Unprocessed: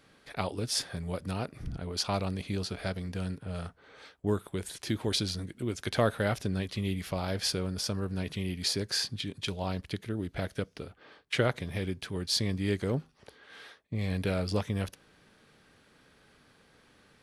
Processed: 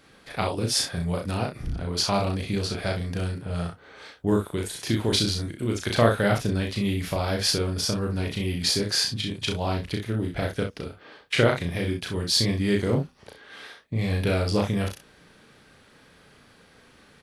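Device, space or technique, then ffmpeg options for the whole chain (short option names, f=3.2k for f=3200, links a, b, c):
slapback doubling: -filter_complex "[0:a]asplit=3[a][b][c];[b]adelay=35,volume=-3dB[d];[c]adelay=64,volume=-8.5dB[e];[a][d][e]amix=inputs=3:normalize=0,volume=5dB"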